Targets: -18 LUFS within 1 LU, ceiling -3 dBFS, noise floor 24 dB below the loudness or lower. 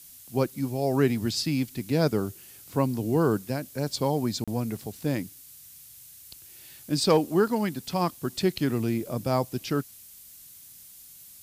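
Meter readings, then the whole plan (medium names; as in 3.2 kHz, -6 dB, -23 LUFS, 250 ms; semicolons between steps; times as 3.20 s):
dropouts 1; longest dropout 36 ms; noise floor -49 dBFS; noise floor target -52 dBFS; loudness -27.5 LUFS; peak level -10.5 dBFS; loudness target -18.0 LUFS
-> interpolate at 4.44 s, 36 ms; noise print and reduce 6 dB; trim +9.5 dB; peak limiter -3 dBFS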